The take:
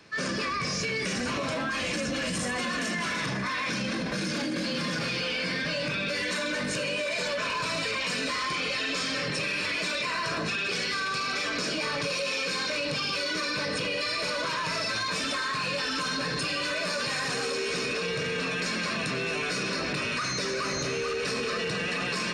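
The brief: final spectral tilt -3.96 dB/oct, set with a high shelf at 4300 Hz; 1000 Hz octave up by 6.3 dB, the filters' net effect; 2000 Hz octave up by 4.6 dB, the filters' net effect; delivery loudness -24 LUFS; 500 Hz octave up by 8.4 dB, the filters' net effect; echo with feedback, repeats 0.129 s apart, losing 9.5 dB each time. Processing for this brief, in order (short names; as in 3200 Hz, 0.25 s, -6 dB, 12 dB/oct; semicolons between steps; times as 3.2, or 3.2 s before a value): bell 500 Hz +8.5 dB; bell 1000 Hz +4.5 dB; bell 2000 Hz +6 dB; high shelf 4300 Hz -8.5 dB; feedback echo 0.129 s, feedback 33%, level -9.5 dB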